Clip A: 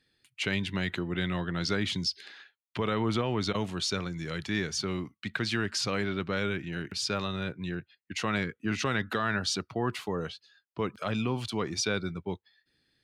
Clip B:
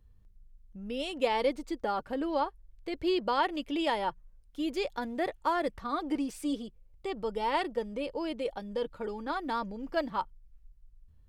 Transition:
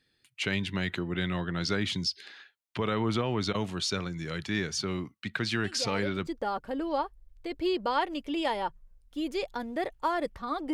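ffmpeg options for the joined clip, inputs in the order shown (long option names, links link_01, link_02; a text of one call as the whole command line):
ffmpeg -i cue0.wav -i cue1.wav -filter_complex "[1:a]asplit=2[link_01][link_02];[0:a]apad=whole_dur=10.73,atrim=end=10.73,atrim=end=6.272[link_03];[link_02]atrim=start=1.688:end=6.15[link_04];[link_01]atrim=start=1.06:end=1.69,asetpts=PTS-STARTPTS,volume=-10dB,afade=type=in:duration=0.004:curve=hsin,afade=type=out:start_time=0.626:duration=0.004:curve=hsin,adelay=5640[link_05];[link_03][link_04]acrossfade=duration=0.004:curve1=hsin:curve2=hsin[link_06];[link_06][link_05]amix=inputs=2:normalize=0" out.wav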